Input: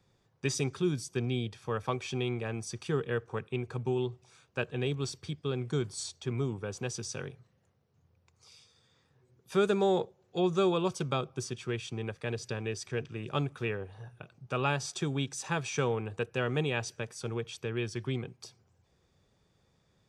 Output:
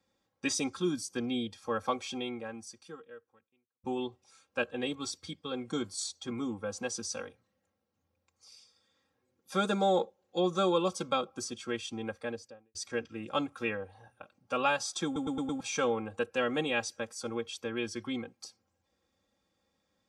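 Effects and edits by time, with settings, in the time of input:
2–3.84 fade out quadratic
12.12–12.75 studio fade out
15.05 stutter in place 0.11 s, 5 plays
whole clip: spectral noise reduction 7 dB; HPF 150 Hz 6 dB/oct; comb 3.7 ms, depth 86%

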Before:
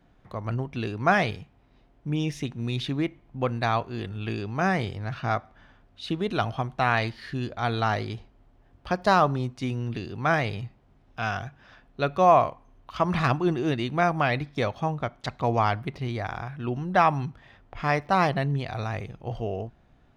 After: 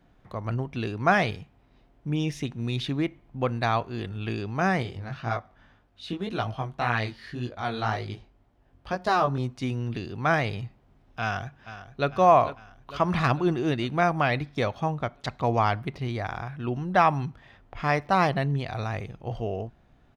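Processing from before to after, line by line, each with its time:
4.83–9.38 chorus 1.9 Hz, delay 16.5 ms, depth 6.1 ms
11.21–12.09 echo throw 0.45 s, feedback 60%, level -13 dB

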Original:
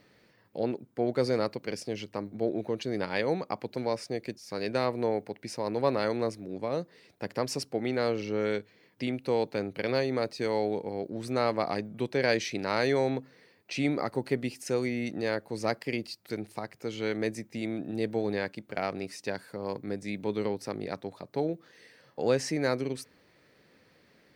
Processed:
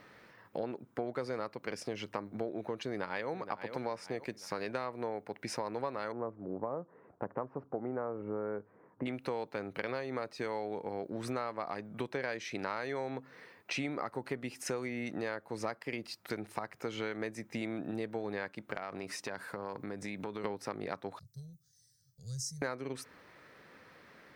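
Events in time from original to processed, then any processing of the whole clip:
2.84–3.3 echo throw 0.47 s, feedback 35%, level -12 dB
6.12–9.06 LPF 1200 Hz 24 dB/oct
18.75–20.44 compressor, threshold -38 dBFS
21.19–22.62 elliptic band-stop 120–5900 Hz
whole clip: bell 1200 Hz +10 dB 1.5 oct; notch 4500 Hz, Q 14; compressor 6:1, threshold -35 dBFS; gain +1 dB

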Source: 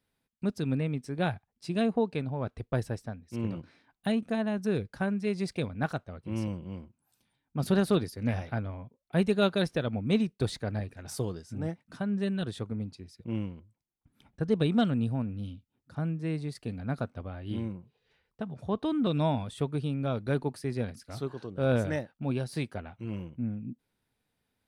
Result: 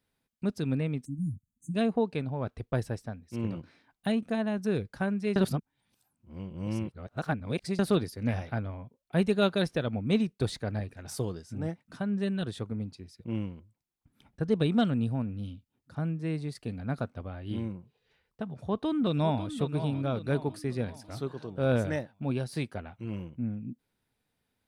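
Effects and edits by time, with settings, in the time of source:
1.05–1.75 spectral delete 320–6200 Hz
5.36–7.79 reverse
18.45–19.49 echo throw 0.55 s, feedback 50%, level -10.5 dB

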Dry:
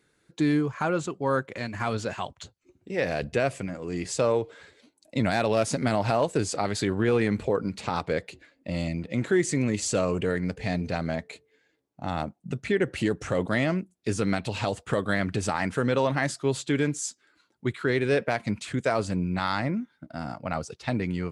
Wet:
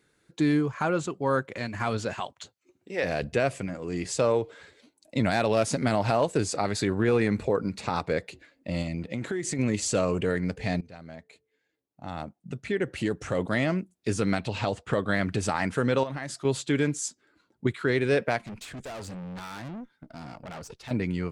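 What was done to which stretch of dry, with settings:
2.2–3.04 HPF 380 Hz 6 dB/oct
6.46–8.28 notch 3100 Hz, Q 9.7
8.82–9.59 compressor 10:1, threshold -26 dBFS
10.81–13.93 fade in, from -19 dB
14.45–15.14 air absorption 56 m
16.03–16.45 compressor 5:1, threshold -31 dBFS
17.08–17.67 tilt shelf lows +6 dB
18.38–20.91 tube stage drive 36 dB, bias 0.55

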